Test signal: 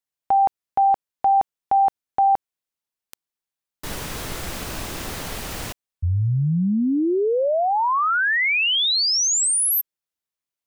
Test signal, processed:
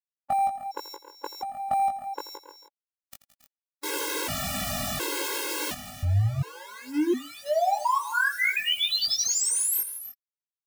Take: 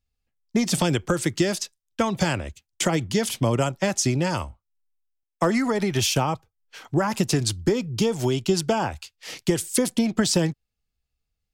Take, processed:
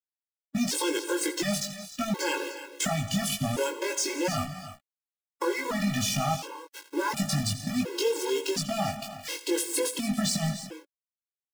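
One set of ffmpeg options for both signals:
ffmpeg -i in.wav -filter_complex "[0:a]highpass=frequency=140:poles=1,asplit=2[link_01][link_02];[link_02]alimiter=limit=-21dB:level=0:latency=1:release=239,volume=-3dB[link_03];[link_01][link_03]amix=inputs=2:normalize=0,acompressor=threshold=-24dB:ratio=16:attack=6.1:release=31:knee=6:detection=peak,aeval=exprs='val(0)*gte(abs(val(0)),0.0266)':channel_layout=same,asplit=2[link_04][link_05];[link_05]adelay=20,volume=-3dB[link_06];[link_04][link_06]amix=inputs=2:normalize=0,aecho=1:1:84|168|183|274|278|306:0.168|0.119|0.112|0.1|0.112|0.2,afftfilt=real='re*gt(sin(2*PI*0.7*pts/sr)*(1-2*mod(floor(b*sr/1024/280),2)),0)':imag='im*gt(sin(2*PI*0.7*pts/sr)*(1-2*mod(floor(b*sr/1024/280),2)),0)':win_size=1024:overlap=0.75" out.wav

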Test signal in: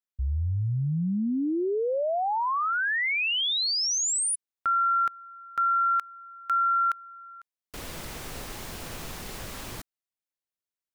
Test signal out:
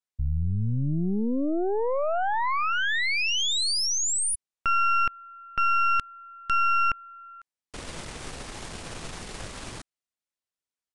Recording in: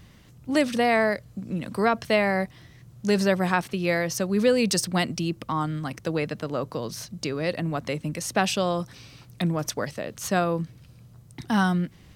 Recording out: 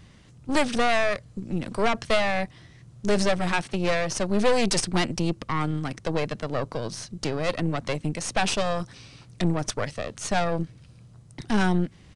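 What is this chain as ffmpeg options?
ffmpeg -i in.wav -af "aeval=exprs='clip(val(0),-1,0.0631)':channel_layout=same,aeval=exprs='0.299*(cos(1*acos(clip(val(0)/0.299,-1,1)))-cos(1*PI/2))+0.0473*(cos(4*acos(clip(val(0)/0.299,-1,1)))-cos(4*PI/2))+0.0237*(cos(6*acos(clip(val(0)/0.299,-1,1)))-cos(6*PI/2))+0.0376*(cos(8*acos(clip(val(0)/0.299,-1,1)))-cos(8*PI/2))':channel_layout=same,aresample=22050,aresample=44100" out.wav

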